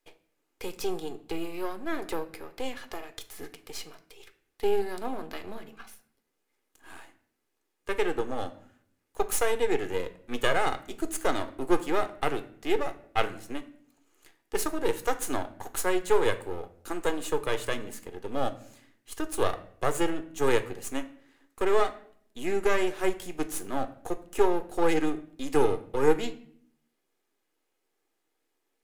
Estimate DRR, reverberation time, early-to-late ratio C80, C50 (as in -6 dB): 9.5 dB, 0.60 s, 19.0 dB, 15.0 dB